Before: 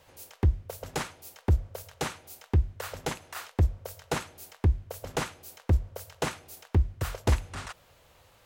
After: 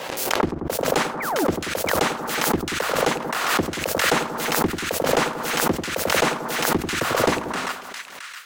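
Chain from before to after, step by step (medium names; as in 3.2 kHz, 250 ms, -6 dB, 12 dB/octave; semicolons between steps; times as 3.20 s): high-pass 190 Hz 24 dB/octave; treble shelf 6.4 kHz -8.5 dB; waveshaping leveller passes 3; painted sound fall, 1.20–1.45 s, 250–2500 Hz -39 dBFS; on a send: two-band feedback delay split 1.4 kHz, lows 91 ms, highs 668 ms, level -7.5 dB; on the sum: swell ahead of each attack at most 34 dB/s; trim +2 dB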